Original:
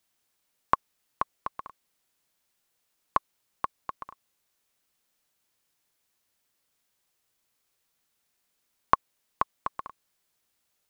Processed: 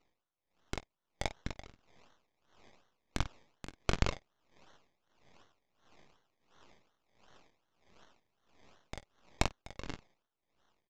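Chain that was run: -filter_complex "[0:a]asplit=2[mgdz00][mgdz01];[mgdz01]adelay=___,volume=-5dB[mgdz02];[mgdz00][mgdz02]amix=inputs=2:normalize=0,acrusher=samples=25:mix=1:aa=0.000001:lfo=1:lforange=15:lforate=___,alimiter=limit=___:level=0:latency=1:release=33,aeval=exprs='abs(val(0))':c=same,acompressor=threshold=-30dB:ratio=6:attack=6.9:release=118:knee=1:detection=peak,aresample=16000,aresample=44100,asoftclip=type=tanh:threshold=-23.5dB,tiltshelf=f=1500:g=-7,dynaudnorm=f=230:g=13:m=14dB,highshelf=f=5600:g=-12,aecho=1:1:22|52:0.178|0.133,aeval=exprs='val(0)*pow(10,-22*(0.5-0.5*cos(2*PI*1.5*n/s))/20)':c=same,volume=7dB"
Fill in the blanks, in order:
42, 2.7, -12.5dB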